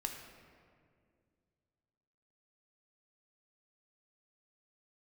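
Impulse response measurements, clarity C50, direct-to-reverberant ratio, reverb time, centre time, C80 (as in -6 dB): 5.0 dB, 2.5 dB, 2.1 s, 48 ms, 6.0 dB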